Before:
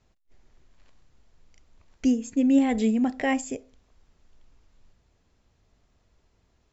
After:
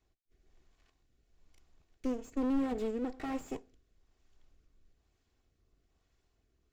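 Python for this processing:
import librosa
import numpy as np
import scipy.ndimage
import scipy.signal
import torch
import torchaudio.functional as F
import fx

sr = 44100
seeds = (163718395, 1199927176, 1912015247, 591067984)

y = fx.lower_of_two(x, sr, delay_ms=2.7)
y = fx.rotary(y, sr, hz=1.1)
y = fx.slew_limit(y, sr, full_power_hz=22.0)
y = y * librosa.db_to_amplitude(-5.5)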